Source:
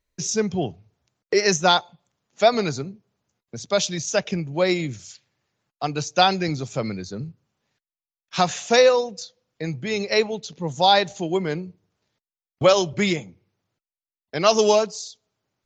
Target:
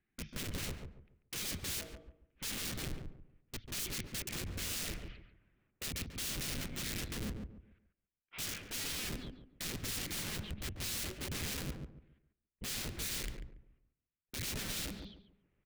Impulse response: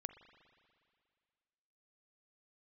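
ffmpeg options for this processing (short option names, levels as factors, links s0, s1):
-filter_complex "[0:a]highpass=f=180:t=q:w=0.5412,highpass=f=180:t=q:w=1.307,lowpass=f=2800:t=q:w=0.5176,lowpass=f=2800:t=q:w=0.7071,lowpass=f=2800:t=q:w=1.932,afreqshift=-230,areverse,acompressor=threshold=0.0316:ratio=20,areverse,aeval=exprs='(mod(84.1*val(0)+1,2)-1)/84.1':c=same,equalizer=f=860:t=o:w=2:g=-14,asplit=2[s0][s1];[s1]adelay=141,lowpass=f=990:p=1,volume=0.631,asplit=2[s2][s3];[s3]adelay=141,lowpass=f=990:p=1,volume=0.31,asplit=2[s4][s5];[s5]adelay=141,lowpass=f=990:p=1,volume=0.31,asplit=2[s6][s7];[s7]adelay=141,lowpass=f=990:p=1,volume=0.31[s8];[s0][s2][s4][s6][s8]amix=inputs=5:normalize=0,volume=2.11"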